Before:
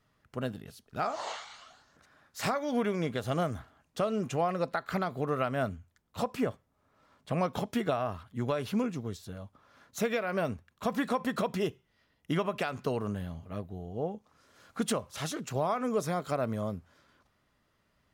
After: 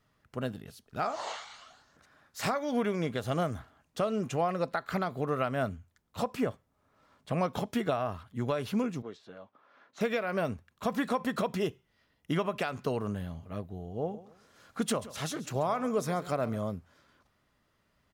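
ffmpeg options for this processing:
-filter_complex "[0:a]asettb=1/sr,asplit=3[s0][s1][s2];[s0]atrim=end=9.024[s3];[s1]atrim=start=9.02:end=10.01,asetpts=PTS-STARTPTS,afade=t=in:d=0.004:c=qsin,afade=t=out:st=0.986:d=0.004:c=qsin,highpass=330,lowpass=3000[s4];[s2]atrim=start=10.006[s5];[s3][s4]acrossfade=d=0.004:c1=hsin:c2=qsin[s6];[s6][s5]acrossfade=d=0.004:c1=qsin:c2=hsin,asplit=3[s7][s8][s9];[s7]afade=t=out:st=14.02:d=0.02[s10];[s8]aecho=1:1:136|272|408:0.15|0.0449|0.0135,afade=t=in:st=14.02:d=0.02,afade=t=out:st=16.57:d=0.02[s11];[s9]afade=t=in:st=16.57:d=0.02[s12];[s10][s11][s12]amix=inputs=3:normalize=0"

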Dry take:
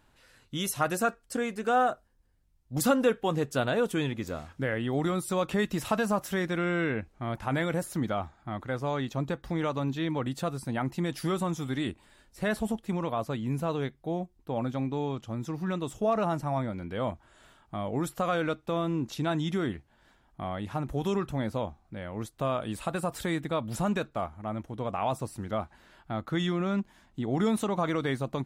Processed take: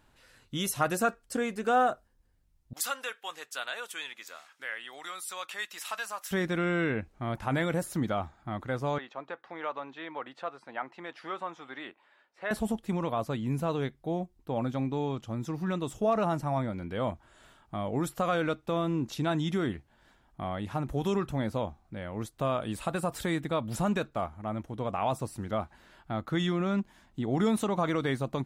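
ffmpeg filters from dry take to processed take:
-filter_complex "[0:a]asettb=1/sr,asplit=3[s0][s1][s2];[s0]atrim=end=2.734[s3];[s1]atrim=start=2.73:end=6.31,asetpts=PTS-STARTPTS,afade=t=in:d=0.004:c=qsin,afade=t=out:st=3.576:d=0.004:c=qsin,highpass=1400[s4];[s2]atrim=start=6.306[s5];[s3][s4]acrossfade=d=0.004:c1=hsin:c2=qsin[s6];[s6][s5]acrossfade=d=0.004:c1=qsin:c2=hsin,asettb=1/sr,asplit=3[s7][s8][s9];[s7]atrim=end=8.984[s10];[s8]atrim=start=8.98:end=12.51,asetpts=PTS-STARTPTS,afade=t=in:d=0.004:c=qsin,afade=t=out:st=3.526:d=0.004:c=qsin,highpass=690,lowpass=2300[s11];[s9]atrim=start=12.506[s12];[s10][s11]acrossfade=d=0.004:c1=hsin:c2=qsin[s13];[s13][s12]acrossfade=d=0.004:c1=qsin:c2=hsin"

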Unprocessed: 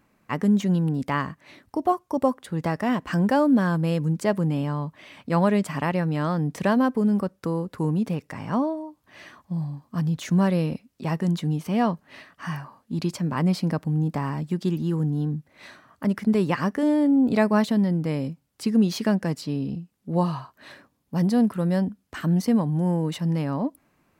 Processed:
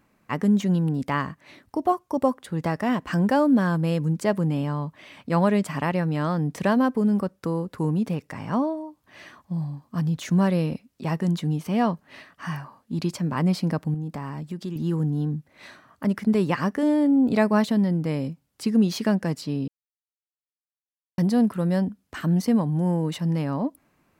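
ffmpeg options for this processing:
-filter_complex "[0:a]asettb=1/sr,asplit=3[s0][s1][s2];[s0]atrim=end=13.944[s3];[s1]atrim=start=13.94:end=14.76,asetpts=PTS-STARTPTS,afade=t=in:d=0.004:c=qsin,afade=t=out:st=0.816:d=0.004:c=qsin,acompressor=threshold=0.0224:ratio=2:attack=3.2:release=140:knee=1:detection=peak[s4];[s2]atrim=start=14.756[s5];[s3][s4]acrossfade=d=0.004:c1=hsin:c2=qsin[s6];[s6][s5]acrossfade=d=0.004:c1=qsin:c2=hsin,asplit=3[s7][s8][s9];[s7]atrim=end=19.68,asetpts=PTS-STARTPTS,afade=t=out:st=19.676:d=0.004:c=hsin[s10];[s8]atrim=start=19.68:end=21.18,asetpts=PTS-STARTPTS,volume=0[s11];[s9]atrim=start=21.18,asetpts=PTS-STARTPTS,afade=t=in:d=0.004:c=hsin[s12];[s10][s11][s12]concat=n=3:v=0:a=1"

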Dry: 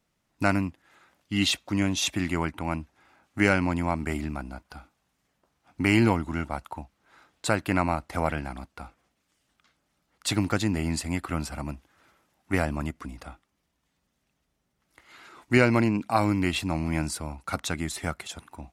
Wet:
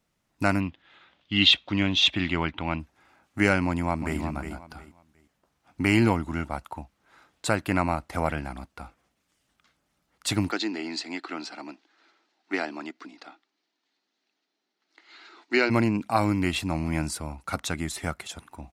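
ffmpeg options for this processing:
-filter_complex "[0:a]asettb=1/sr,asplit=3[s0][s1][s2];[s0]atrim=end=0.604[s3];[s1]atrim=start=0.6:end=2.8,asetpts=PTS-STARTPTS,afade=t=in:d=0.004:c=qsin,afade=t=out:st=2.196:d=0.004:c=qsin,lowpass=f=3400:t=q:w=3.5[s4];[s2]atrim=start=2.796[s5];[s3][s4]acrossfade=d=0.004:c1=hsin:c2=qsin[s6];[s6][s5]acrossfade=d=0.004:c1=qsin:c2=hsin,asplit=2[s7][s8];[s8]afade=t=in:st=3.65:d=0.01,afade=t=out:st=4.19:d=0.01,aecho=0:1:360|720|1080:0.375837|0.0939594|0.0234898[s9];[s7][s9]amix=inputs=2:normalize=0,asplit=3[s10][s11][s12];[s10]afade=t=out:st=10.5:d=0.02[s13];[s11]highpass=f=300:w=0.5412,highpass=f=300:w=1.3066,equalizer=f=320:t=q:w=4:g=3,equalizer=f=540:t=q:w=4:g=-9,equalizer=f=1100:t=q:w=4:g=-5,equalizer=f=4200:t=q:w=4:g=8,lowpass=f=6000:w=0.5412,lowpass=f=6000:w=1.3066,afade=t=in:st=10.5:d=0.02,afade=t=out:st=15.69:d=0.02[s14];[s12]afade=t=in:st=15.69:d=0.02[s15];[s13][s14][s15]amix=inputs=3:normalize=0"

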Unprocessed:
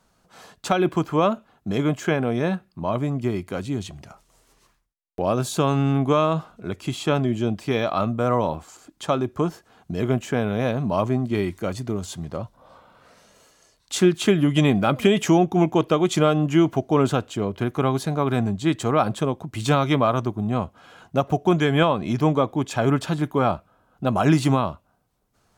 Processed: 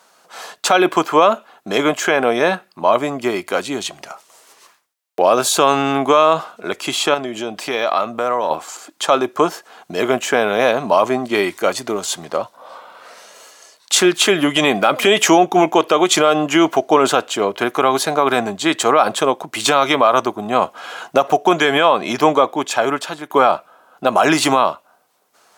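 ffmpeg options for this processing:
-filter_complex "[0:a]asettb=1/sr,asplit=3[s0][s1][s2];[s0]atrim=end=7.144[s3];[s1]atrim=start=7.14:end=8.51,asetpts=PTS-STARTPTS,afade=t=in:d=0.004:c=qsin,afade=t=out:st=1.366:d=0.004:c=qsin,acompressor=threshold=0.0501:ratio=3:attack=3.2:release=140:knee=1:detection=peak[s4];[s2]atrim=start=8.506[s5];[s3][s4]acrossfade=d=0.004:c1=hsin:c2=qsin[s6];[s6][s5]acrossfade=d=0.004:c1=qsin:c2=hsin,asplit=4[s7][s8][s9][s10];[s7]atrim=end=20.622[s11];[s8]atrim=start=20.618:end=21.272,asetpts=PTS-STARTPTS,volume=1.5[s12];[s9]atrim=start=21.268:end=23.3,asetpts=PTS-STARTPTS,afade=t=out:st=1.012:d=1.02:silence=0.223872[s13];[s10]atrim=start=23.3,asetpts=PTS-STARTPTS,afade=t=in:d=0.004:c=hsin:silence=0.223872[s14];[s11][s12]acrossfade=d=0.004:c1=hsin:c2=hsin[s15];[s13][s14]concat=n=2:v=0:a=1[s16];[s15][s16]acrossfade=d=0.004:c1=hsin:c2=hsin,highpass=530,alimiter=level_in=5.62:limit=0.891:release=50:level=0:latency=1,volume=0.891"

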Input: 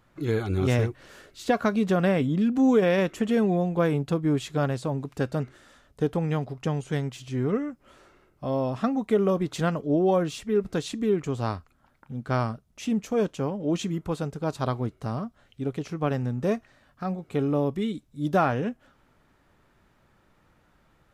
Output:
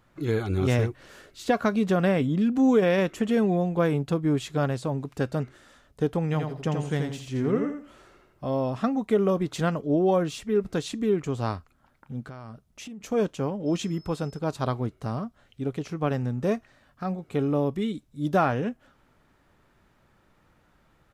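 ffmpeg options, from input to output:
-filter_complex "[0:a]asplit=3[s0][s1][s2];[s0]afade=t=out:st=6.33:d=0.02[s3];[s1]aecho=1:1:83|166|249:0.562|0.135|0.0324,afade=t=in:st=6.33:d=0.02,afade=t=out:st=8.48:d=0.02[s4];[s2]afade=t=in:st=8.48:d=0.02[s5];[s3][s4][s5]amix=inputs=3:normalize=0,asettb=1/sr,asplit=3[s6][s7][s8];[s6]atrim=end=12.234[s9];[s7]atrim=start=12.23:end=13.01,asetpts=PTS-STARTPTS,afade=t=in:d=0.004:c=qsin,afade=t=out:st=0.776:d=0.004:c=qsin,acompressor=threshold=0.0141:ratio=12:attack=3.2:release=140:knee=1:detection=peak[s10];[s8]atrim=start=13.006[s11];[s9][s10]acrossfade=d=0.004:c1=hsin:c2=qsin[s12];[s12][s11]acrossfade=d=0.004:c1=qsin:c2=hsin,asettb=1/sr,asplit=3[s13][s14][s15];[s13]atrim=end=13.664[s16];[s14]atrim=start=13.66:end=14.39,asetpts=PTS-STARTPTS,afade=t=in:d=0.004:c=qsin,afade=t=out:st=0.726:d=0.004:c=qsin,aeval=exprs='val(0)+0.002*sin(2*PI*5200*n/s)':c=same[s17];[s15]atrim=start=14.386[s18];[s16][s17]acrossfade=d=0.004:c1=hsin:c2=qsin[s19];[s19][s18]acrossfade=d=0.004:c1=qsin:c2=hsin"

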